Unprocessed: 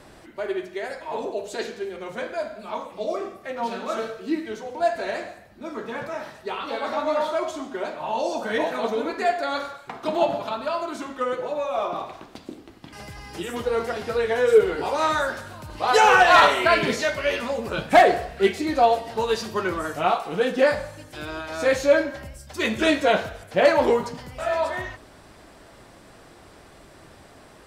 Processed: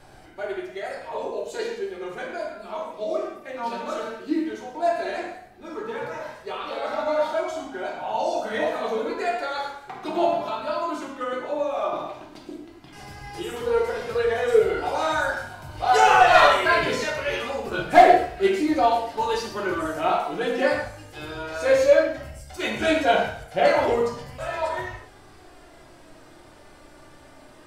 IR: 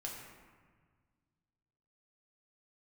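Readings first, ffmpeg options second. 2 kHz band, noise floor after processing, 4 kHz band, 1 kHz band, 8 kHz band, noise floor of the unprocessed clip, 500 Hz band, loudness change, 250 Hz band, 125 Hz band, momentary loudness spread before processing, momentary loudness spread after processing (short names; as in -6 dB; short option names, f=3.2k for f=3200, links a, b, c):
-1.0 dB, -49 dBFS, -1.5 dB, +0.5 dB, -1.5 dB, -49 dBFS, -0.5 dB, 0.0 dB, -0.5 dB, -1.0 dB, 16 LU, 17 LU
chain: -filter_complex "[0:a]flanger=delay=1.3:depth=2.1:regen=48:speed=0.13:shape=sinusoidal[a];[1:a]atrim=start_sample=2205,atrim=end_sample=6615[b];[a][b]afir=irnorm=-1:irlink=0,volume=5dB"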